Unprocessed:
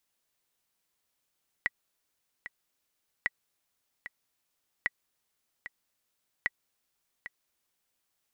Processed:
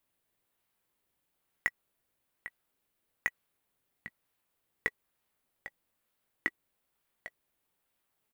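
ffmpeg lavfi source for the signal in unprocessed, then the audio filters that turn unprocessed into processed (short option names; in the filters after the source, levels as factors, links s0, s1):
-f lavfi -i "aevalsrc='pow(10,(-14-13*gte(mod(t,2*60/75),60/75))/20)*sin(2*PI*1940*mod(t,60/75))*exp(-6.91*mod(t,60/75)/0.03)':d=6.4:s=44100"
-filter_complex "[0:a]equalizer=f=5800:t=o:w=1.1:g=-9,asplit=2[s0][s1];[s1]acrusher=samples=18:mix=1:aa=0.000001:lfo=1:lforange=28.8:lforate=1.1,volume=0.282[s2];[s0][s2]amix=inputs=2:normalize=0,asplit=2[s3][s4];[s4]adelay=18,volume=0.224[s5];[s3][s5]amix=inputs=2:normalize=0"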